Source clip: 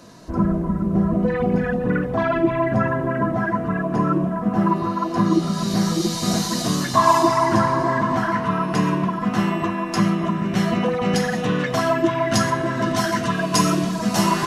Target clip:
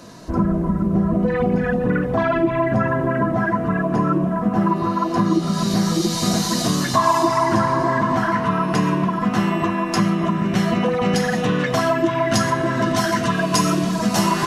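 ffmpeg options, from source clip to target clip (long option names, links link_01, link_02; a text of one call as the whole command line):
ffmpeg -i in.wav -af "acompressor=threshold=-21dB:ratio=2,volume=4dB" out.wav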